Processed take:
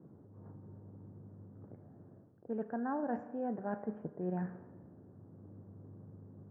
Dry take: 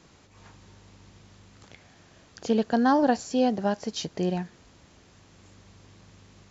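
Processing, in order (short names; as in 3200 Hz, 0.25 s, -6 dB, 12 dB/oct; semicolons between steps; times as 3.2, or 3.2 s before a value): elliptic band-pass 100–1600 Hz, stop band 40 dB; low-pass opened by the level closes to 380 Hz, open at -19.5 dBFS; reverse; compressor 5:1, threshold -40 dBFS, peak gain reduction 20 dB; reverse; spring tank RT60 1.2 s, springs 33/38 ms, chirp 35 ms, DRR 11.5 dB; gain +3.5 dB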